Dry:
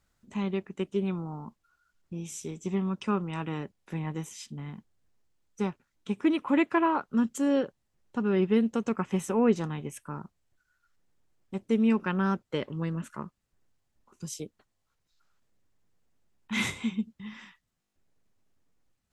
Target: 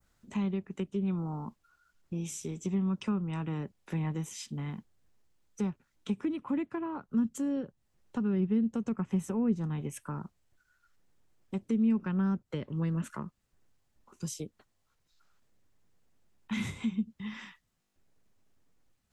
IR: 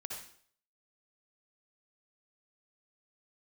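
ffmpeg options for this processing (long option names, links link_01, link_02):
-filter_complex "[0:a]adynamicequalizer=threshold=0.00501:dfrequency=3200:dqfactor=0.7:tfrequency=3200:tqfactor=0.7:attack=5:release=100:ratio=0.375:range=2:mode=cutabove:tftype=bell,acrossover=split=220[link_01][link_02];[link_02]acompressor=threshold=-40dB:ratio=10[link_03];[link_01][link_03]amix=inputs=2:normalize=0,volume=2.5dB"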